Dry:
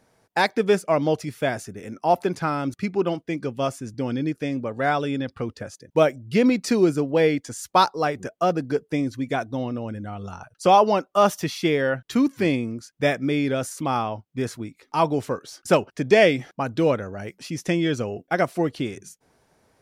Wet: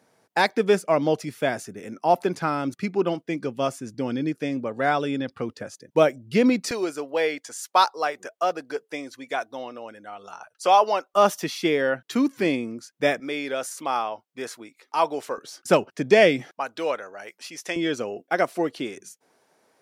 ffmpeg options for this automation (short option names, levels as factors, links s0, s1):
-af "asetnsamples=n=441:p=0,asendcmd='6.71 highpass f 570;11.14 highpass f 230;13.2 highpass f 490;15.38 highpass f 160;16.51 highpass f 640;17.76 highpass f 290',highpass=160"